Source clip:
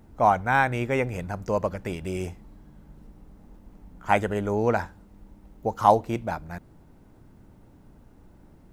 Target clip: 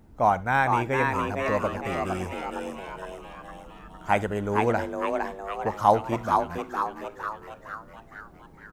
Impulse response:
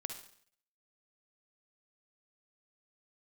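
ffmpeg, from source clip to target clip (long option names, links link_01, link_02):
-filter_complex "[0:a]asplit=8[link_01][link_02][link_03][link_04][link_05][link_06][link_07][link_08];[link_02]adelay=460,afreqshift=140,volume=-4dB[link_09];[link_03]adelay=920,afreqshift=280,volume=-9.4dB[link_10];[link_04]adelay=1380,afreqshift=420,volume=-14.7dB[link_11];[link_05]adelay=1840,afreqshift=560,volume=-20.1dB[link_12];[link_06]adelay=2300,afreqshift=700,volume=-25.4dB[link_13];[link_07]adelay=2760,afreqshift=840,volume=-30.8dB[link_14];[link_08]adelay=3220,afreqshift=980,volume=-36.1dB[link_15];[link_01][link_09][link_10][link_11][link_12][link_13][link_14][link_15]amix=inputs=8:normalize=0,asplit=2[link_16][link_17];[1:a]atrim=start_sample=2205,atrim=end_sample=3528[link_18];[link_17][link_18]afir=irnorm=-1:irlink=0,volume=-9.5dB[link_19];[link_16][link_19]amix=inputs=2:normalize=0,volume=-3.5dB"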